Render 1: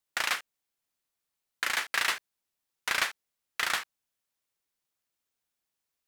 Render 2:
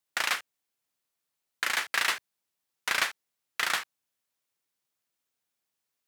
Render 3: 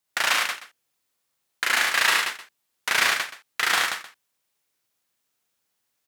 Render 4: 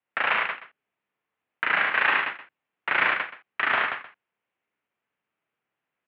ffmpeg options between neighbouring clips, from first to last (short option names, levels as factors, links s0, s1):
-af "highpass=86,volume=1.12"
-af "aecho=1:1:43|74|101|181|307:0.668|0.631|0.631|0.562|0.112,volume=1.5"
-af "highpass=f=190:t=q:w=0.5412,highpass=f=190:t=q:w=1.307,lowpass=f=2800:t=q:w=0.5176,lowpass=f=2800:t=q:w=0.7071,lowpass=f=2800:t=q:w=1.932,afreqshift=-74"